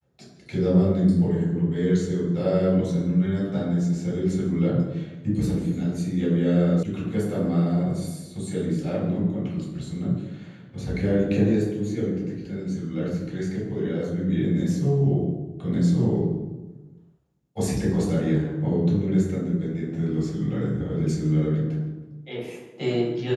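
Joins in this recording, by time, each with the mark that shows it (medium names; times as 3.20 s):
6.83 s: sound stops dead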